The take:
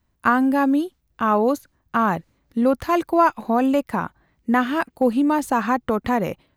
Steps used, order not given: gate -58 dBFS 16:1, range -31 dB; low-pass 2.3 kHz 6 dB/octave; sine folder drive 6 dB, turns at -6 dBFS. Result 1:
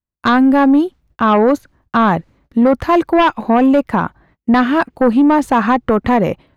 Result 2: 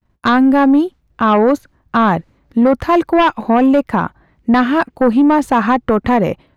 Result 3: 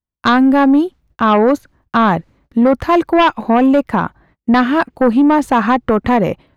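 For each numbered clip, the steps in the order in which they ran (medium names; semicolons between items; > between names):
gate > sine folder > low-pass; sine folder > low-pass > gate; low-pass > gate > sine folder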